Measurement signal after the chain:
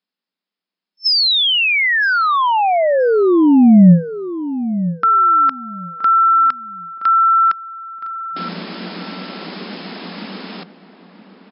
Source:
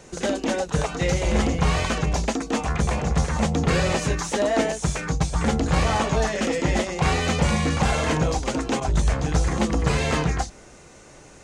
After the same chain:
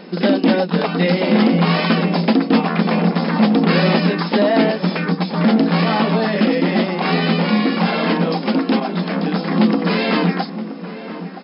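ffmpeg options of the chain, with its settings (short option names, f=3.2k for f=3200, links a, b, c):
-filter_complex "[0:a]apsyclip=17.5dB,afftfilt=real='re*between(b*sr/4096,170,5300)':imag='im*between(b*sr/4096,170,5300)':win_size=4096:overlap=0.75,dynaudnorm=f=140:g=31:m=4.5dB,bass=f=250:g=13,treble=f=4k:g=3,asplit=2[a][b];[b]adelay=971,lowpass=f=1.6k:p=1,volume=-12dB,asplit=2[c][d];[d]adelay=971,lowpass=f=1.6k:p=1,volume=0.22,asplit=2[e][f];[f]adelay=971,lowpass=f=1.6k:p=1,volume=0.22[g];[c][e][g]amix=inputs=3:normalize=0[h];[a][h]amix=inputs=2:normalize=0,volume=-7dB"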